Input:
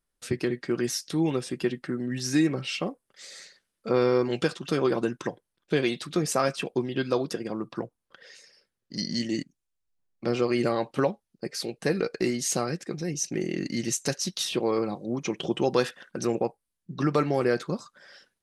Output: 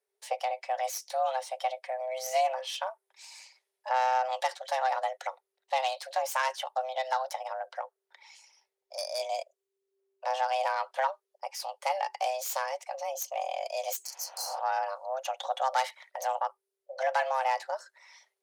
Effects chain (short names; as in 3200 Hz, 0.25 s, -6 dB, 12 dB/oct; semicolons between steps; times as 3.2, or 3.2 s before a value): self-modulated delay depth 0.11 ms; frequency shift +390 Hz; spectral repair 14.08–14.57, 220–4100 Hz both; gain -4 dB